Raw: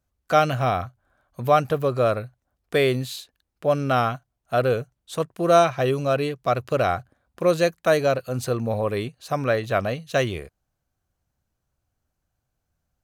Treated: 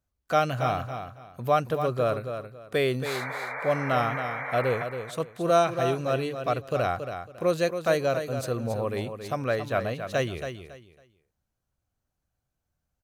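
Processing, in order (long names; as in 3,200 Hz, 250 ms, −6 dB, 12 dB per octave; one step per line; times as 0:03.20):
sound drawn into the spectrogram noise, 0:03.05–0:04.84, 440–2,400 Hz −30 dBFS
repeating echo 276 ms, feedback 24%, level −8.5 dB
level −5 dB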